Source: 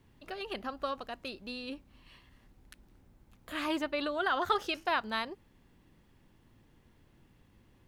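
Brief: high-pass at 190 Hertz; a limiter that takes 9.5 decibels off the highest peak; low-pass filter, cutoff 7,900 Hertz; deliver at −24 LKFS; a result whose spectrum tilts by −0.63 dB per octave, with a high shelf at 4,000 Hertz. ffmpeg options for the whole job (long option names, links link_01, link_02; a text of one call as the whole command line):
ffmpeg -i in.wav -af "highpass=190,lowpass=7900,highshelf=frequency=4000:gain=-6,volume=14.5dB,alimiter=limit=-11.5dB:level=0:latency=1" out.wav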